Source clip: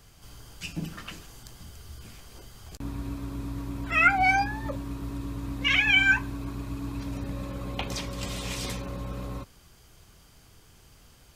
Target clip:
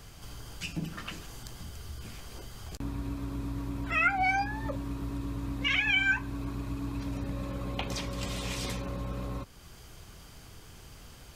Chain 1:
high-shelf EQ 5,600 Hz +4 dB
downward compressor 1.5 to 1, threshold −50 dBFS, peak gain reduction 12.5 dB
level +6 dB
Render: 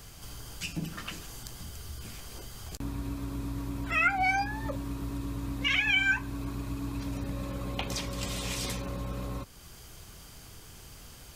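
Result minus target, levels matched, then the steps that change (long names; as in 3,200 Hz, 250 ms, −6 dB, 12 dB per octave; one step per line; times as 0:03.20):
8,000 Hz band +4.0 dB
change: high-shelf EQ 5,600 Hz −3 dB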